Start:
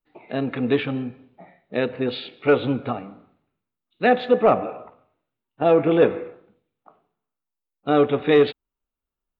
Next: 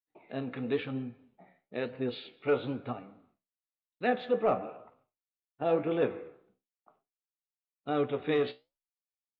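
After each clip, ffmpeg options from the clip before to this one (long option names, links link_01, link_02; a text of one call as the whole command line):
ffmpeg -i in.wav -af "agate=range=-33dB:threshold=-54dB:ratio=3:detection=peak,flanger=delay=7.4:depth=8.7:regen=66:speed=1:shape=sinusoidal,volume=-7dB" out.wav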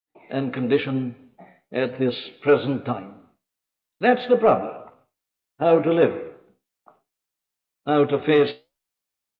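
ffmpeg -i in.wav -af "dynaudnorm=framelen=130:gausssize=3:maxgain=11dB" out.wav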